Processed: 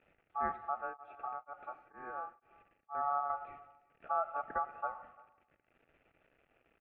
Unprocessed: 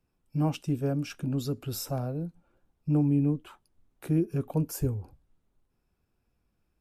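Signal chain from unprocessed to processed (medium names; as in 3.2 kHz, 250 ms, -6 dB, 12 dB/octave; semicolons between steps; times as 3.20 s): zero-crossing glitches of -30 dBFS; elliptic band-pass 140–1600 Hz, stop band 40 dB; band-stop 1.2 kHz, Q 12; de-hum 221.9 Hz, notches 28; ring modulator 1 kHz; distance through air 270 m; delay 347 ms -23.5 dB; reverberation RT60 1.0 s, pre-delay 87 ms, DRR 15 dB; 0.74–3.30 s: tremolo of two beating tones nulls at 2.1 Hz; trim -4 dB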